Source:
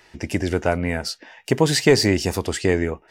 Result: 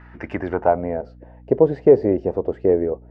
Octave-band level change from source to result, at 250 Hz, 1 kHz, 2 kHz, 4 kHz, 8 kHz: -1.0 dB, +3.0 dB, under -10 dB, under -30 dB, under -40 dB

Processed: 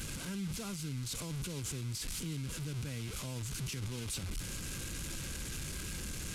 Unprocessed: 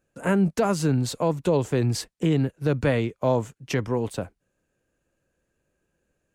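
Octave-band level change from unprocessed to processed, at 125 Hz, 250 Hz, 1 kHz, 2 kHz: -12.0, -16.5, -20.5, -11.0 dB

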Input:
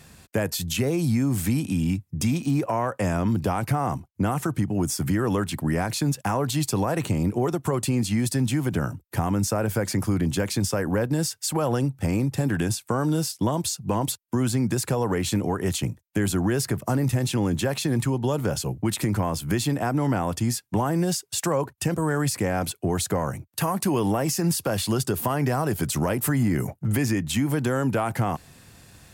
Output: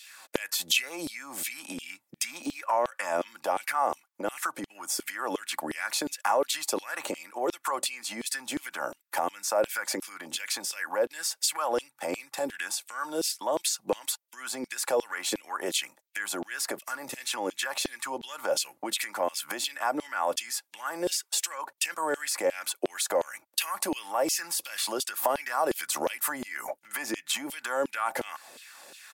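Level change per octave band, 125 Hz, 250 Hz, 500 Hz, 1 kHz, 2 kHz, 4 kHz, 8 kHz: -32.5, -15.0, -4.0, -1.5, +0.5, +1.0, -0.5 dB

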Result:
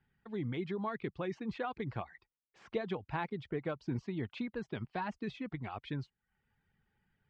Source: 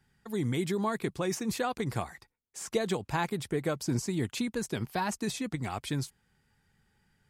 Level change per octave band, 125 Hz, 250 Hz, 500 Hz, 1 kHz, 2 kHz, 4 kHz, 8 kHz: -6.5 dB, -6.5 dB, -6.5 dB, -6.0 dB, -6.5 dB, -12.0 dB, under -30 dB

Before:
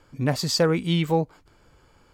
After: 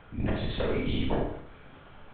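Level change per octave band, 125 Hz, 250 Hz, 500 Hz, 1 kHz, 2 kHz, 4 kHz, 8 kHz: -7.5 dB, -6.5 dB, -7.5 dB, -8.0 dB, -6.5 dB, -11.0 dB, under -40 dB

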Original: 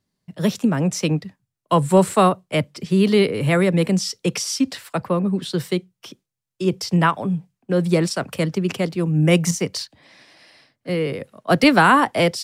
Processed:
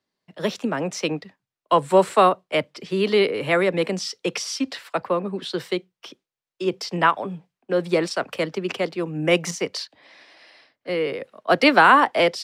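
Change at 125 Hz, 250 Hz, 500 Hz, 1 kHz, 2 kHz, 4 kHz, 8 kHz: -12.0, -7.0, -0.5, +1.0, +1.0, -1.0, -6.0 dB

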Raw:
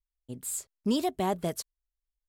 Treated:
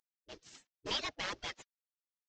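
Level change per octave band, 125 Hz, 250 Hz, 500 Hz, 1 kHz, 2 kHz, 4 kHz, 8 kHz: -17.5, -22.0, -15.0, -11.0, +5.0, +2.0, -14.5 dB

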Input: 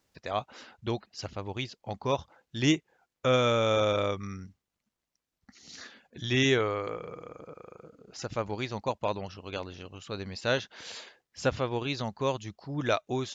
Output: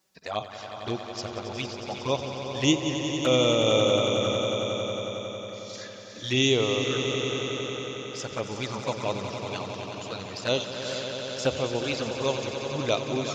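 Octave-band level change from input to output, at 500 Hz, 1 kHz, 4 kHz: +4.0, +1.0, +7.5 dB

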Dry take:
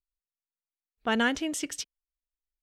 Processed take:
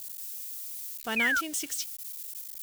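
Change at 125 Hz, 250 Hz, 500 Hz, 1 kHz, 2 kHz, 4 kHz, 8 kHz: n/a, -7.5 dB, -7.0 dB, -2.5 dB, +3.5 dB, -1.5 dB, +4.0 dB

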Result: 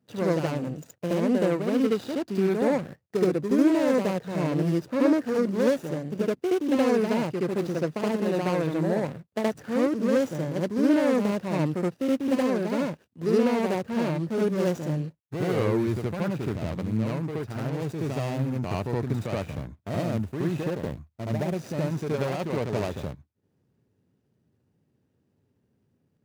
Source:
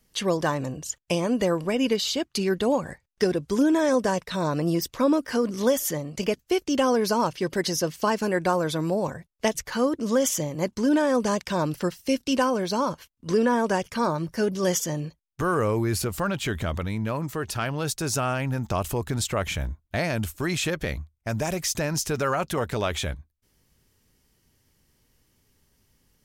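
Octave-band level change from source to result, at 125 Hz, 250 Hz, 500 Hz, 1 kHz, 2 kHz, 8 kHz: +0.5, +1.0, -0.5, -6.0, -5.0, -15.0 dB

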